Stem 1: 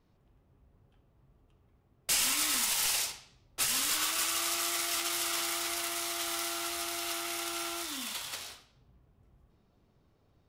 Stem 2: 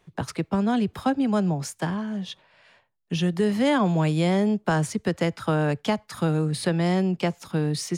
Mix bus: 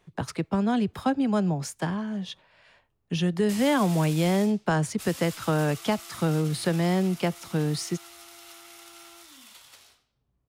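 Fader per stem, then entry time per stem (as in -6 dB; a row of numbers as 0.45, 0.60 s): -12.0, -1.5 dB; 1.40, 0.00 s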